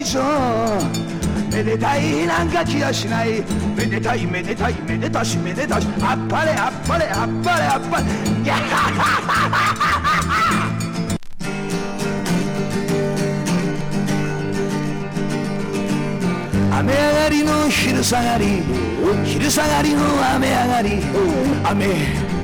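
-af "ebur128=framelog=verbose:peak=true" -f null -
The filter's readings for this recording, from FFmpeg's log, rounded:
Integrated loudness:
  I:         -18.8 LUFS
  Threshold: -28.8 LUFS
Loudness range:
  LRA:         4.4 LU
  Threshold: -38.9 LUFS
  LRA low:   -21.4 LUFS
  LRA high:  -17.0 LUFS
True peak:
  Peak:      -11.3 dBFS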